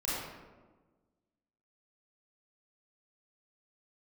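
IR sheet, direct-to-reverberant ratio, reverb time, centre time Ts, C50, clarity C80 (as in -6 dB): -9.0 dB, 1.3 s, 0.1 s, -3.0 dB, 0.0 dB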